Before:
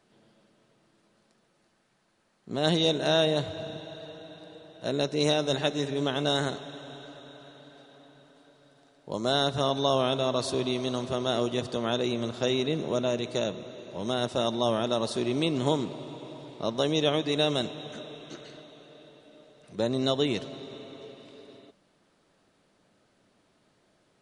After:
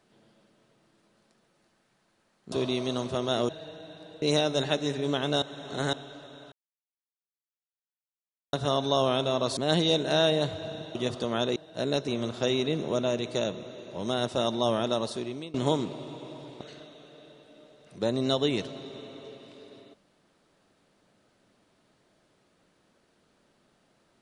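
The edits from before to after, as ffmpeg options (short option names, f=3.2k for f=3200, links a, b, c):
-filter_complex "[0:a]asplit=14[a][b][c][d][e][f][g][h][i][j][k][l][m][n];[a]atrim=end=2.522[o];[b]atrim=start=10.498:end=11.472[p];[c]atrim=start=3.898:end=4.632[q];[d]atrim=start=5.148:end=6.352[r];[e]atrim=start=6.348:end=6.862,asetpts=PTS-STARTPTS,areverse[s];[f]atrim=start=6.858:end=7.45,asetpts=PTS-STARTPTS,afade=t=out:st=0.588:d=0.004:c=hsin[t];[g]atrim=start=7.45:end=9.46,asetpts=PTS-STARTPTS,volume=0[u];[h]atrim=start=9.46:end=10.502,asetpts=PTS-STARTPTS,afade=t=in:d=0.004:c=hsin[v];[i]atrim=start=2.518:end=3.902[w];[j]atrim=start=11.468:end=12.082[x];[k]atrim=start=4.628:end=5.152[y];[l]atrim=start=12.078:end=15.54,asetpts=PTS-STARTPTS,afade=t=out:st=2.832:d=0.63:silence=0.0794328[z];[m]atrim=start=15.54:end=16.612,asetpts=PTS-STARTPTS,afade=t=in:d=0.004:c=hsin:silence=0.0794328[aa];[n]atrim=start=18.378[ab];[o][p]acrossfade=d=0.004:c1=hsin:c2=hsin[ac];[ac][q]acrossfade=d=0.004:c1=hsin:c2=hsin[ad];[ad][r]acrossfade=d=0.004:c1=hsin:c2=hsin[ae];[ae][s]acrossfade=d=0.004:c1=hsin:c2=hsin[af];[t][u][v]concat=n=3:v=0:a=1[ag];[af][ag]acrossfade=d=0.004:c1=hsin:c2=hsin[ah];[ah][w]acrossfade=d=0.004:c1=hsin:c2=hsin[ai];[ai][x]acrossfade=d=0.004:c1=hsin:c2=hsin[aj];[aj][y]acrossfade=d=0.004:c1=hsin:c2=hsin[ak];[z][aa]concat=n=2:v=0:a=1[al];[ak][al]acrossfade=d=0.004:c1=hsin:c2=hsin[am];[am][ab]acrossfade=d=0.004:c1=hsin:c2=hsin"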